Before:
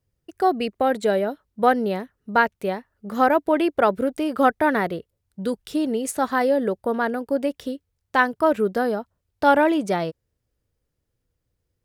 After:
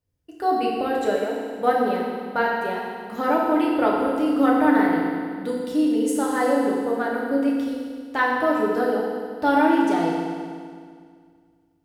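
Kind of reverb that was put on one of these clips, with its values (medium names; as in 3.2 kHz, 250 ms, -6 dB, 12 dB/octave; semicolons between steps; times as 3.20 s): FDN reverb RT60 2 s, low-frequency decay 1.2×, high-frequency decay 0.95×, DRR -4 dB; trim -6.5 dB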